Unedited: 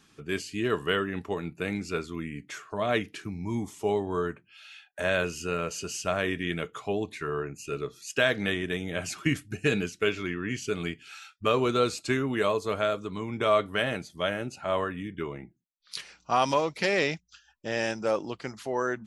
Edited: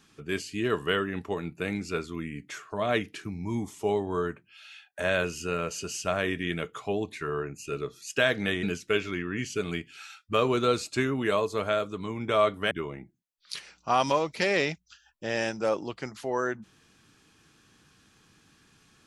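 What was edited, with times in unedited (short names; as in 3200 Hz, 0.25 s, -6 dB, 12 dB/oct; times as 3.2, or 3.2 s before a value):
8.63–9.75 cut
13.83–15.13 cut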